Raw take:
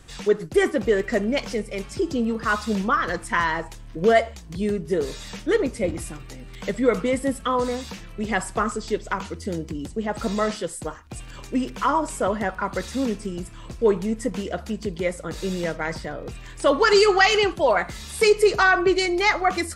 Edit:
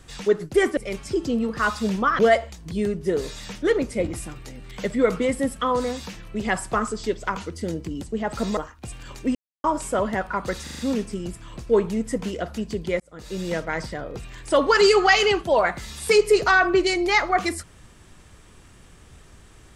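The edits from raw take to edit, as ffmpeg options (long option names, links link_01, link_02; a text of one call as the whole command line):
ffmpeg -i in.wav -filter_complex "[0:a]asplit=11[link_01][link_02][link_03][link_04][link_05][link_06][link_07][link_08][link_09][link_10][link_11];[link_01]atrim=end=0.772[link_12];[link_02]atrim=start=1.628:end=3.052[link_13];[link_03]atrim=start=4.028:end=10.412[link_14];[link_04]atrim=start=10.848:end=11.63,asetpts=PTS-STARTPTS,afade=type=out:start_time=0.778:duration=0.004:curve=hsin[link_15];[link_05]atrim=start=11.63:end=11.92,asetpts=PTS-STARTPTS,volume=0[link_16];[link_06]atrim=start=11.92:end=12.952,asetpts=PTS-STARTPTS,afade=type=in:duration=0.004:curve=hsin[link_17];[link_07]atrim=start=12.908:end=12.952[link_18];[link_08]atrim=start=12.908:end=12.952[link_19];[link_09]atrim=start=12.908:end=12.952[link_20];[link_10]atrim=start=12.908:end=15.12,asetpts=PTS-STARTPTS,afade=type=out:start_time=2.208:duration=0.004:curve=hsin[link_21];[link_11]atrim=start=15.12,asetpts=PTS-STARTPTS,afade=type=in:duration=0.53[link_22];[link_12][link_13]acrossfade=duration=0.004:curve1=hsin:curve2=hsin[link_23];[link_23][link_14]acrossfade=duration=0.004:curve1=hsin:curve2=hsin[link_24];[link_15][link_16][link_17]concat=n=3:v=0:a=1[link_25];[link_24][link_25]acrossfade=duration=0.004:curve1=hsin:curve2=hsin[link_26];[link_26][link_18]acrossfade=duration=0.004:curve1=hsin:curve2=hsin[link_27];[link_27][link_19]acrossfade=duration=0.004:curve1=hsin:curve2=hsin[link_28];[link_28][link_20]acrossfade=duration=0.004:curve1=hsin:curve2=hsin[link_29];[link_21][link_22]concat=n=2:v=0:a=1[link_30];[link_29][link_30]acrossfade=duration=0.004:curve1=hsin:curve2=hsin" out.wav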